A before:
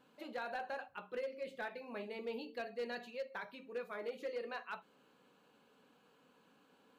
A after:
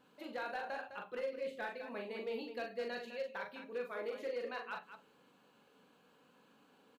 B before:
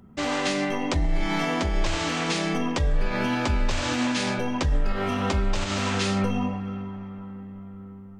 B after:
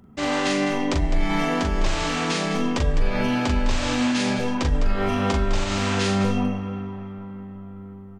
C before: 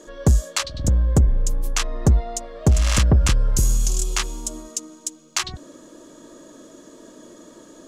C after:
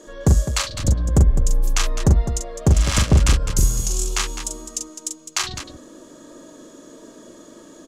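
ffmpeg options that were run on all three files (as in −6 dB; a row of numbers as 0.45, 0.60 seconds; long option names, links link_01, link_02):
-af "aecho=1:1:40.82|207:0.562|0.316"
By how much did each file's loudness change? +1.5, +2.5, +1.0 LU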